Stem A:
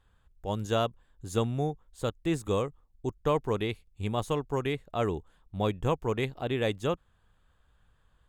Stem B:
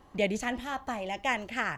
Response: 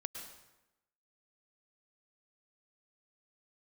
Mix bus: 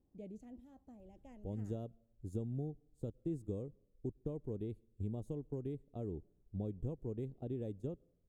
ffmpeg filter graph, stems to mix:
-filter_complex "[0:a]acompressor=mode=upward:threshold=-35dB:ratio=2.5,agate=range=-11dB:threshold=-38dB:ratio=16:detection=peak,acompressor=threshold=-33dB:ratio=3,adelay=1000,volume=-3.5dB,asplit=2[a][b];[b]volume=-23dB[c];[1:a]volume=-16.5dB[d];[2:a]atrim=start_sample=2205[e];[c][e]afir=irnorm=-1:irlink=0[f];[a][d][f]amix=inputs=3:normalize=0,firequalizer=gain_entry='entry(300,0);entry(1100,-26);entry(2100,-27);entry(7800,-15)':delay=0.05:min_phase=1"

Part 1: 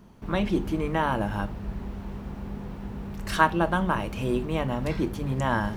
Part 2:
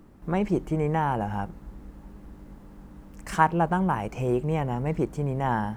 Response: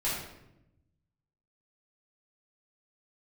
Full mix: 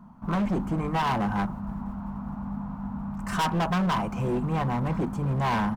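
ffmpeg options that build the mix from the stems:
-filter_complex "[0:a]firequalizer=gain_entry='entry(110,0);entry(170,7);entry(240,9);entry(370,-20);entry(660,4);entry(1000,10);entry(1700,-6);entry(3000,-12)':delay=0.05:min_phase=1,volume=-3dB[a];[1:a]bandreject=f=460:w=12,agate=range=-12dB:threshold=-42dB:ratio=16:detection=peak,volume=-2.5dB[b];[a][b]amix=inputs=2:normalize=0,equalizer=f=1.4k:w=2.9:g=4.5,volume=22.5dB,asoftclip=hard,volume=-22.5dB"

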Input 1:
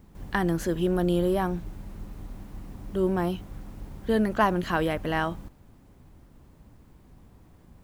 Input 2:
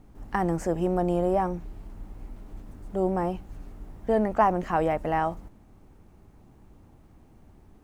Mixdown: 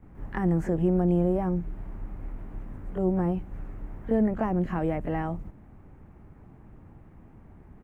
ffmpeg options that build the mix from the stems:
-filter_complex "[0:a]acompressor=threshold=-28dB:ratio=6,volume=-6.5dB[a];[1:a]adelay=23,volume=1dB[b];[a][b]amix=inputs=2:normalize=0,highshelf=f=2.9k:t=q:w=1.5:g=-12,acrossover=split=420|3000[c][d][e];[d]acompressor=threshold=-39dB:ratio=3[f];[c][f][e]amix=inputs=3:normalize=0,equalizer=f=130:t=o:w=1.6:g=4"

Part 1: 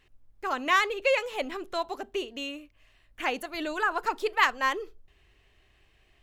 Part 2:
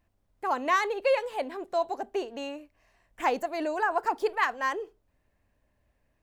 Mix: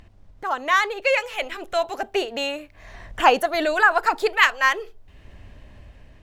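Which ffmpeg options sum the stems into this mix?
-filter_complex "[0:a]volume=-0.5dB[a];[1:a]lowpass=5.9k,lowshelf=f=200:g=8.5,acompressor=mode=upward:threshold=-32dB:ratio=2.5,volume=-1,volume=-2dB[b];[a][b]amix=inputs=2:normalize=0,dynaudnorm=f=440:g=5:m=11.5dB"

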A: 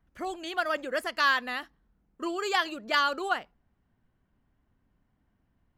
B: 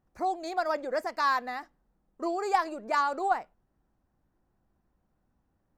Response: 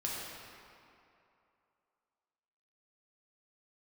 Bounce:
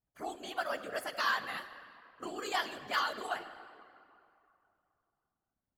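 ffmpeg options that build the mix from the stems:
-filter_complex "[0:a]agate=range=-33dB:threshold=-58dB:ratio=3:detection=peak,highshelf=f=6.9k:g=10,volume=-4.5dB,asplit=2[a][b];[b]volume=-10.5dB[c];[1:a]volume=-1,volume=-12dB[d];[2:a]atrim=start_sample=2205[e];[c][e]afir=irnorm=-1:irlink=0[f];[a][d][f]amix=inputs=3:normalize=0,afftfilt=real='hypot(re,im)*cos(2*PI*random(0))':imag='hypot(re,im)*sin(2*PI*random(1))':win_size=512:overlap=0.75"

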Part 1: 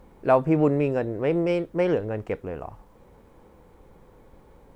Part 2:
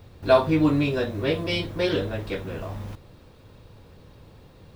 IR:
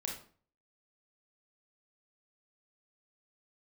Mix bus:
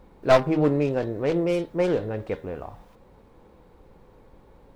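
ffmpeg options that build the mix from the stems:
-filter_complex "[0:a]highshelf=f=3.9k:g=-7,bandreject=f=79.19:t=h:w=4,bandreject=f=158.38:t=h:w=4,bandreject=f=237.57:t=h:w=4,bandreject=f=316.76:t=h:w=4,bandreject=f=395.95:t=h:w=4,bandreject=f=475.14:t=h:w=4,bandreject=f=554.33:t=h:w=4,bandreject=f=633.52:t=h:w=4,bandreject=f=712.71:t=h:w=4,bandreject=f=791.9:t=h:w=4,bandreject=f=871.09:t=h:w=4,bandreject=f=950.28:t=h:w=4,bandreject=f=1.02947k:t=h:w=4,bandreject=f=1.10866k:t=h:w=4,bandreject=f=1.18785k:t=h:w=4,bandreject=f=1.26704k:t=h:w=4,bandreject=f=1.34623k:t=h:w=4,bandreject=f=1.42542k:t=h:w=4,bandreject=f=1.50461k:t=h:w=4,bandreject=f=1.5838k:t=h:w=4,bandreject=f=1.66299k:t=h:w=4,bandreject=f=1.74218k:t=h:w=4,bandreject=f=1.82137k:t=h:w=4,bandreject=f=1.90056k:t=h:w=4,bandreject=f=1.97975k:t=h:w=4,bandreject=f=2.05894k:t=h:w=4,asoftclip=type=hard:threshold=-12dB,volume=0dB[a];[1:a]highpass=420,aeval=exprs='0.531*(cos(1*acos(clip(val(0)/0.531,-1,1)))-cos(1*PI/2))+0.106*(cos(4*acos(clip(val(0)/0.531,-1,1)))-cos(4*PI/2))+0.106*(cos(7*acos(clip(val(0)/0.531,-1,1)))-cos(7*PI/2))':c=same,volume=-6dB[b];[a][b]amix=inputs=2:normalize=0"

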